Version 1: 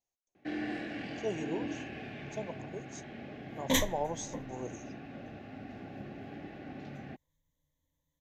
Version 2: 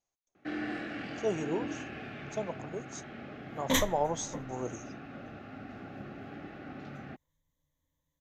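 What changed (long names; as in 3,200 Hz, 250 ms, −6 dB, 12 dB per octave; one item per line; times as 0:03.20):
speech +4.0 dB
master: add parametric band 1,300 Hz +15 dB 0.26 octaves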